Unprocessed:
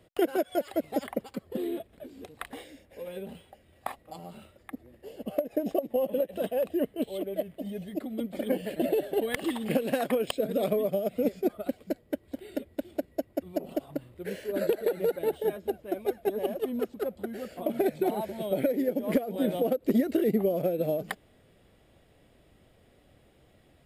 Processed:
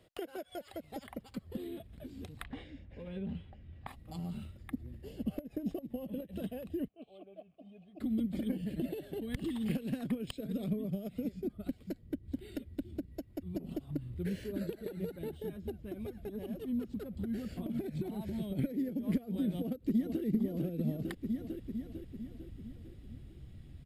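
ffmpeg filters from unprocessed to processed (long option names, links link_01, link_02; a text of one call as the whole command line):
ffmpeg -i in.wav -filter_complex "[0:a]asettb=1/sr,asplit=3[link_01][link_02][link_03];[link_01]atrim=end=2.444[link_04];[link_02]atrim=start=2.44:end=3.87,asetpts=PTS-STARTPTS,afade=type=in:duration=0.004:curve=qsin,afade=type=out:start_time=1.426:duration=0.004:curve=qsin,lowpass=2900[link_05];[link_03]atrim=start=3.866[link_06];[link_04][link_05]acrossfade=duration=0.004:curve1=hsin:curve2=qsin[link_07];[link_07][link_06]acrossfade=duration=0.004:curve1=qsin:curve2=hsin,asplit=3[link_08][link_09][link_10];[link_08]afade=type=out:start_time=6.87:duration=0.02[link_11];[link_09]asplit=3[link_12][link_13][link_14];[link_12]bandpass=frequency=730:width_type=q:width=8,volume=0dB[link_15];[link_13]bandpass=frequency=1090:width_type=q:width=8,volume=-6dB[link_16];[link_14]bandpass=frequency=2440:width_type=q:width=8,volume=-9dB[link_17];[link_15][link_16][link_17]amix=inputs=3:normalize=0,afade=type=in:start_time=6.87:duration=0.02,afade=type=out:start_time=7.99:duration=0.02[link_18];[link_10]afade=type=in:start_time=7.99:duration=0.02[link_19];[link_11][link_18][link_19]amix=inputs=3:normalize=0,asettb=1/sr,asplit=3[link_20][link_21][link_22];[link_20]atrim=end=8.644[link_23];[link_21]atrim=start=8.64:end=13.55,asetpts=PTS-STARTPTS,afade=type=in:duration=0.004:curve=qsin,afade=type=out:start_time=4.906:duration=0.004:curve=qsin,acrossover=split=410[link_24][link_25];[link_24]aeval=exprs='val(0)*(1-0.5/2+0.5/2*cos(2*PI*1.4*n/s))':channel_layout=same[link_26];[link_25]aeval=exprs='val(0)*(1-0.5/2-0.5/2*cos(2*PI*1.4*n/s))':channel_layout=same[link_27];[link_26][link_27]amix=inputs=2:normalize=0[link_28];[link_22]atrim=start=13.546[link_29];[link_23][link_28]acrossfade=duration=0.004:curve1=hsin:curve2=qsin[link_30];[link_30][link_29]acrossfade=duration=0.004:curve1=qsin:curve2=hsin,asettb=1/sr,asplit=3[link_31][link_32][link_33];[link_31]atrim=end=15.804[link_34];[link_32]atrim=start=15.8:end=18.59,asetpts=PTS-STARTPTS,afade=type=in:duration=0.004:curve=qsin,afade=type=out:start_time=2.786:duration=0.004:curve=qsin,acompressor=threshold=-37dB:ratio=2.5:attack=3.2:release=140:knee=1:detection=peak[link_35];[link_33]atrim=start=18.586[link_36];[link_34][link_35]acrossfade=duration=0.004:curve1=hsin:curve2=qsin[link_37];[link_37][link_36]acrossfade=duration=0.004:curve1=qsin:curve2=hsin,asplit=2[link_38][link_39];[link_39]afade=type=in:start_time=19.55:duration=0.01,afade=type=out:start_time=20.24:duration=0.01,aecho=0:1:450|900|1350|1800|2250|2700|3150:0.530884|0.291986|0.160593|0.0883259|0.0485792|0.0267186|0.0146952[link_40];[link_38][link_40]amix=inputs=2:normalize=0,equalizer=frequency=4200:width_type=o:width=1.3:gain=4,acompressor=threshold=-35dB:ratio=4,asubboost=boost=12:cutoff=170,volume=-4.5dB" out.wav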